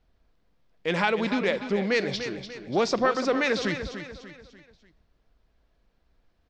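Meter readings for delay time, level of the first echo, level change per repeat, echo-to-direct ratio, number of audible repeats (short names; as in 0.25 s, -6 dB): 0.294 s, -10.0 dB, -7.5 dB, -9.0 dB, 4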